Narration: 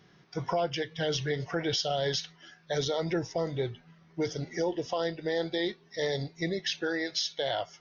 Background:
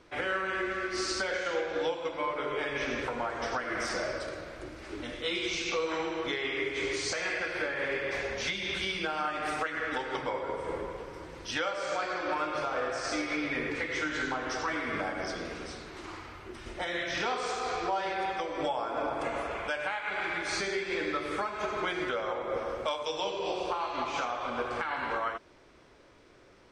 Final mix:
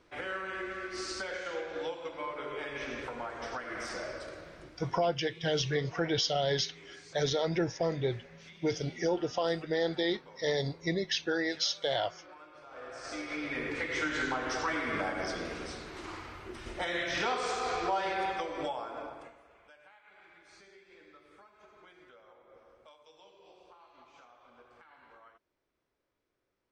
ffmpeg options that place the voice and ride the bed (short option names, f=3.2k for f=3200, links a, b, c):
-filter_complex "[0:a]adelay=4450,volume=0dB[a];[1:a]volume=15dB,afade=t=out:st=4.4:d=0.73:silence=0.177828,afade=t=in:st=12.64:d=1.42:silence=0.0891251,afade=t=out:st=18.21:d=1.15:silence=0.0530884[b];[a][b]amix=inputs=2:normalize=0"